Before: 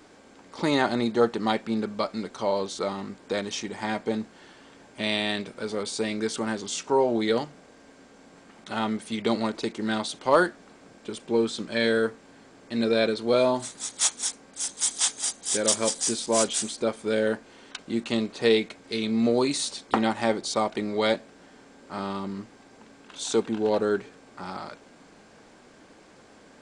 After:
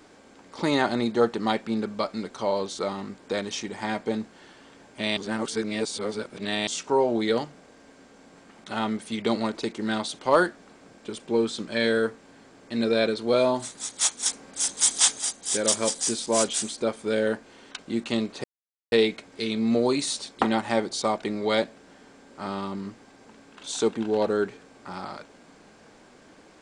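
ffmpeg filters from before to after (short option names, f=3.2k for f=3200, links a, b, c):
-filter_complex "[0:a]asplit=6[a][b][c][d][e][f];[a]atrim=end=5.172[g];[b]atrim=start=5.168:end=6.672,asetpts=PTS-STARTPTS,areverse[h];[c]atrim=start=6.668:end=14.262[i];[d]atrim=start=14.258:end=15.182,asetpts=PTS-STARTPTS,volume=4.5dB[j];[e]atrim=start=15.178:end=18.44,asetpts=PTS-STARTPTS,afade=t=out:st=3.258:d=0.004:c=hsin,apad=pad_dur=0.48[k];[f]atrim=start=18.44,asetpts=PTS-STARTPTS,afade=t=in:d=0.004:c=hsin[l];[g][h]acrossfade=d=0.004:c1=hsin:c2=hsin[m];[m][i]acrossfade=d=0.004:c1=hsin:c2=hsin[n];[n][j]acrossfade=d=0.004:c1=hsin:c2=hsin[o];[k][l]concat=n=2:v=0:a=1[p];[o][p]acrossfade=d=0.004:c1=hsin:c2=hsin"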